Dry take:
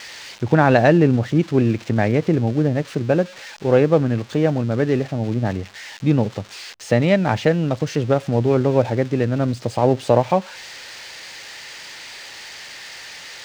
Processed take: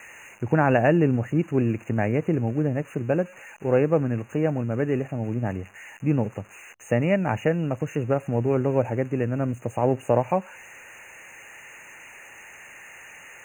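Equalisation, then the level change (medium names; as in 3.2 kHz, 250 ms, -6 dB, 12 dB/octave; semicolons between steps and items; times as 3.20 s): brick-wall FIR band-stop 2.9–6.2 kHz; band-stop 7.8 kHz, Q 7.1; -5.5 dB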